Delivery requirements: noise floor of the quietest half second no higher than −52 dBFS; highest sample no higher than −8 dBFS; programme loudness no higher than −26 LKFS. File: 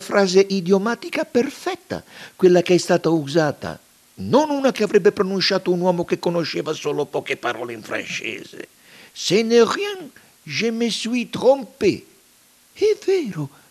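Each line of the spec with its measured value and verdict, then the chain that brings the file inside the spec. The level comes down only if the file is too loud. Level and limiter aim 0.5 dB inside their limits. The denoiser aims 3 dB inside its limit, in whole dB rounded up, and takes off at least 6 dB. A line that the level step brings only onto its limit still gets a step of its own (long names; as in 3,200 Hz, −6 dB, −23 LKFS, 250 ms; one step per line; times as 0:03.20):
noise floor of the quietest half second −54 dBFS: in spec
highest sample −3.5 dBFS: out of spec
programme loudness −20.0 LKFS: out of spec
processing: level −6.5 dB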